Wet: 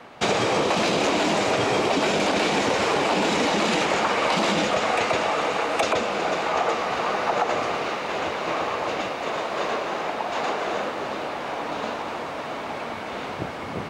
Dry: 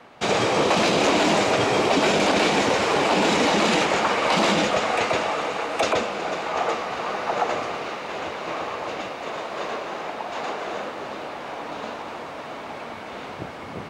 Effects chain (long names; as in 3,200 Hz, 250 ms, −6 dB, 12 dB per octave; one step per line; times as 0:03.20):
downward compressor, threshold −22 dBFS, peak gain reduction 6.5 dB
level +3.5 dB